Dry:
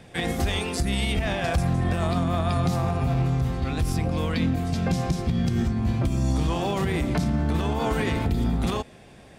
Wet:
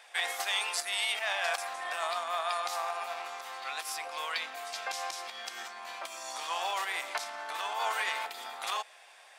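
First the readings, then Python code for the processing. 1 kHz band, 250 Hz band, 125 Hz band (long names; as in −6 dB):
−2.0 dB, −38.0 dB, below −40 dB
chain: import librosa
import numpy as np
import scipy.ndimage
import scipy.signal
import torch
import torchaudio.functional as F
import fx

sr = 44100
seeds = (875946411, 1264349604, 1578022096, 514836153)

y = scipy.signal.sosfilt(scipy.signal.butter(4, 790.0, 'highpass', fs=sr, output='sos'), x)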